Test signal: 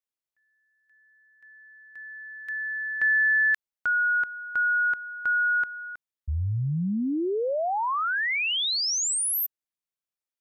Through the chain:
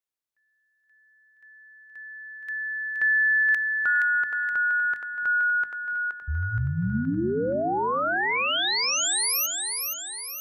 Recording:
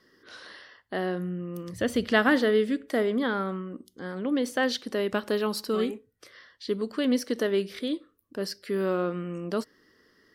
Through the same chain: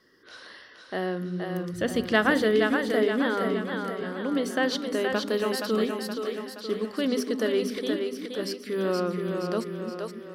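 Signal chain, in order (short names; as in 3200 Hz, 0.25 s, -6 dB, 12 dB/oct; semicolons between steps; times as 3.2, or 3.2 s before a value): notches 50/100/150/200/250/300 Hz; split-band echo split 310 Hz, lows 0.293 s, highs 0.472 s, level -4.5 dB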